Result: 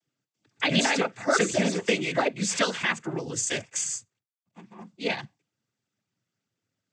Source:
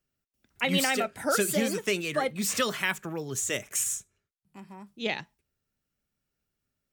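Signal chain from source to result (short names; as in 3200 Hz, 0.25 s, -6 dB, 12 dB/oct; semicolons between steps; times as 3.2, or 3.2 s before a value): 3.52–4.78 G.711 law mismatch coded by A; noise vocoder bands 16; gain +3 dB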